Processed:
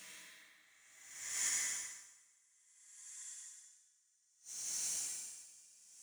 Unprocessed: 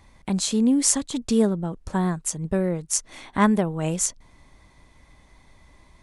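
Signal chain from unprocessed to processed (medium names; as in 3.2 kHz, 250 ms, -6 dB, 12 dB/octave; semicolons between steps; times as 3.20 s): local Wiener filter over 41 samples; frequency weighting A; bit crusher 10-bit; on a send: two-band feedback delay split 2.4 kHz, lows 148 ms, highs 605 ms, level -4 dB; on the sum: Paulstretch 37×, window 0.05 s, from 5.17 s; in parallel at -8.5 dB: integer overflow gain 47 dB; on the sum: inverted gate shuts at -31 dBFS, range -28 dB; plate-style reverb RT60 3.1 s, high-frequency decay 0.8×, DRR -4 dB; logarithmic tremolo 0.61 Hz, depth 22 dB; trim +6 dB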